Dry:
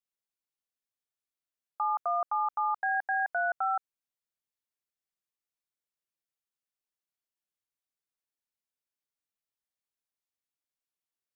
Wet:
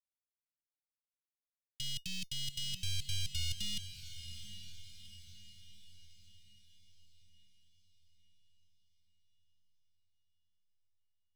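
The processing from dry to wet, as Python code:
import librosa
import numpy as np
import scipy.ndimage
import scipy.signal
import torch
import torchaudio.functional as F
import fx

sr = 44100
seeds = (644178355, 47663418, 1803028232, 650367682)

y = fx.tracing_dist(x, sr, depth_ms=0.029)
y = scipy.signal.sosfilt(scipy.signal.butter(4, 1500.0, 'lowpass', fs=sr, output='sos'), y)
y = fx.low_shelf(y, sr, hz=430.0, db=5.5)
y = fx.over_compress(y, sr, threshold_db=-30.0, ratio=-0.5)
y = fx.leveller(y, sr, passes=5)
y = scipy.signal.sosfilt(scipy.signal.cheby2(4, 70, [450.0, 1100.0], 'bandstop', fs=sr, output='sos'), y)
y = fx.comb_fb(y, sr, f0_hz=720.0, decay_s=0.15, harmonics='all', damping=0.0, mix_pct=60)
y = fx.echo_diffused(y, sr, ms=740, feedback_pct=51, wet_db=-10.5)
y = y * librosa.db_to_amplitude(2.5)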